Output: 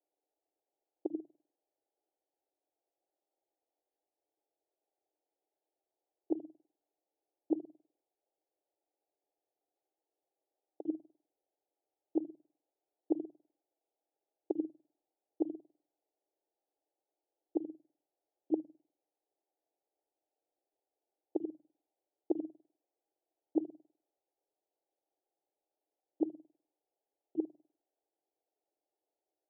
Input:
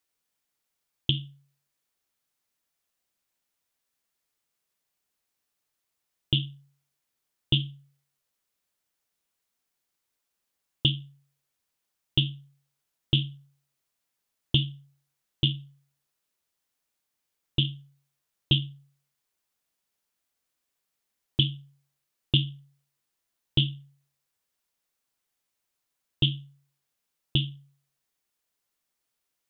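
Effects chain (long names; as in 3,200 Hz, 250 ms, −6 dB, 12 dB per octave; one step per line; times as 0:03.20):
reversed piece by piece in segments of 50 ms
Chebyshev band-pass filter 300–830 Hz, order 4
level +5.5 dB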